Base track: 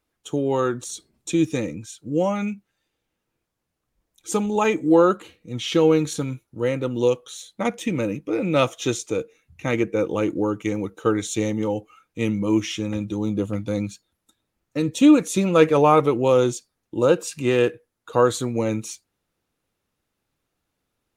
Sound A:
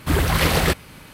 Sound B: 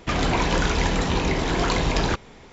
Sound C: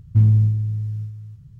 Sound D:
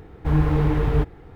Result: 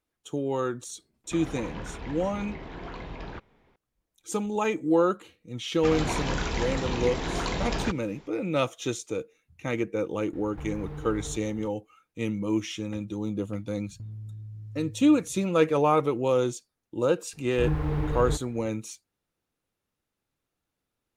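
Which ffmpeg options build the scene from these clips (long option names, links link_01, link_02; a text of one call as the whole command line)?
ffmpeg -i bed.wav -i cue0.wav -i cue1.wav -i cue2.wav -i cue3.wav -filter_complex "[2:a]asplit=2[link_01][link_02];[4:a]asplit=2[link_03][link_04];[0:a]volume=-6.5dB[link_05];[link_01]lowpass=2800[link_06];[link_03]acompressor=threshold=-31dB:ratio=6:attack=3.2:release=140:knee=1:detection=peak[link_07];[3:a]acompressor=threshold=-29dB:ratio=5:attack=5.2:release=59:knee=1:detection=peak[link_08];[link_04]dynaudnorm=framelen=150:gausssize=3:maxgain=11.5dB[link_09];[link_06]atrim=end=2.52,asetpts=PTS-STARTPTS,volume=-16.5dB,afade=type=in:duration=0.004:curve=hsin,afade=type=out:start_time=2.516:duration=0.004:curve=hsin,adelay=1240[link_10];[link_02]atrim=end=2.52,asetpts=PTS-STARTPTS,volume=-7.5dB,afade=type=in:duration=0.004:curve=hsin,afade=type=out:start_time=2.516:duration=0.004:curve=hsin,adelay=5760[link_11];[link_07]atrim=end=1.35,asetpts=PTS-STARTPTS,volume=-4dB,afade=type=in:duration=0.004:curve=hsin,afade=type=out:start_time=1.346:duration=0.004:curve=hsin,adelay=10330[link_12];[link_08]atrim=end=1.59,asetpts=PTS-STARTPTS,volume=-11dB,afade=type=in:duration=0.004:curve=hsin,afade=type=out:start_time=1.586:duration=0.004:curve=hsin,adelay=13850[link_13];[link_09]atrim=end=1.35,asetpts=PTS-STARTPTS,volume=-15dB,afade=type=in:duration=0.004:curve=hsin,afade=type=out:start_time=1.346:duration=0.004:curve=hsin,adelay=17330[link_14];[link_05][link_10][link_11][link_12][link_13][link_14]amix=inputs=6:normalize=0" out.wav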